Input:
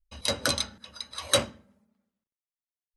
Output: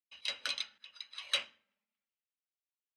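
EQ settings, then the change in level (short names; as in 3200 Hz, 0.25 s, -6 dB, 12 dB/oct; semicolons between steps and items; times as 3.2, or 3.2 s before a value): band-pass 2700 Hz, Q 2.8; 0.0 dB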